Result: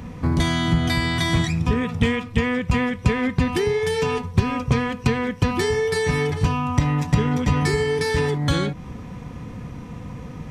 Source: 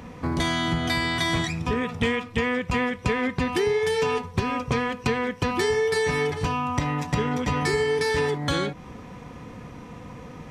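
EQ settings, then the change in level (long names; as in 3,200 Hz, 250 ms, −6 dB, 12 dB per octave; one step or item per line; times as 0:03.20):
bass and treble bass +9 dB, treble −2 dB
high-shelf EQ 4,700 Hz +5.5 dB
0.0 dB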